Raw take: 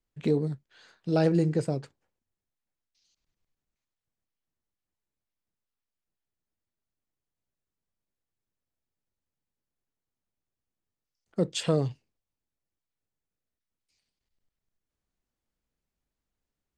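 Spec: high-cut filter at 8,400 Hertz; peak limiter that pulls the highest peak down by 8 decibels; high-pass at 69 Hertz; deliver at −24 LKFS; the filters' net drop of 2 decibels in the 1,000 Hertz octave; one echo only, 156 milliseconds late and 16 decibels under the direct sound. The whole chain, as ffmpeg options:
ffmpeg -i in.wav -af "highpass=69,lowpass=8400,equalizer=frequency=1000:width_type=o:gain=-3,alimiter=limit=-21.5dB:level=0:latency=1,aecho=1:1:156:0.158,volume=8.5dB" out.wav

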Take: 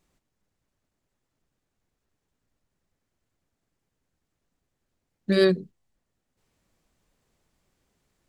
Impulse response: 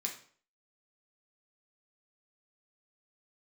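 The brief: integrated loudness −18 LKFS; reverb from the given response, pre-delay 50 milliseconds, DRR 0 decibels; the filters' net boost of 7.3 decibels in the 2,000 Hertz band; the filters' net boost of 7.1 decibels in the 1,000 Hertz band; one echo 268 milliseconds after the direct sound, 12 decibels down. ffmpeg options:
-filter_complex "[0:a]equalizer=frequency=1000:width_type=o:gain=7,equalizer=frequency=2000:width_type=o:gain=6.5,aecho=1:1:268:0.251,asplit=2[link_01][link_02];[1:a]atrim=start_sample=2205,adelay=50[link_03];[link_02][link_03]afir=irnorm=-1:irlink=0,volume=-0.5dB[link_04];[link_01][link_04]amix=inputs=2:normalize=0,volume=1dB"

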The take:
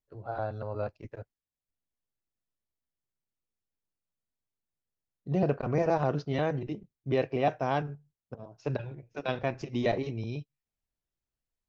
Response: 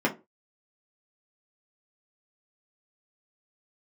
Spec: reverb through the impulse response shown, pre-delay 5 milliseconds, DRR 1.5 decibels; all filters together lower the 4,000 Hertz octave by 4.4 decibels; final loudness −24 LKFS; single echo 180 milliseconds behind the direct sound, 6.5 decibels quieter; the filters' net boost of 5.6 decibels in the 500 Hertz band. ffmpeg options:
-filter_complex "[0:a]equalizer=frequency=500:width_type=o:gain=7,equalizer=frequency=4000:width_type=o:gain=-6,aecho=1:1:180:0.473,asplit=2[link_01][link_02];[1:a]atrim=start_sample=2205,adelay=5[link_03];[link_02][link_03]afir=irnorm=-1:irlink=0,volume=-14dB[link_04];[link_01][link_04]amix=inputs=2:normalize=0"

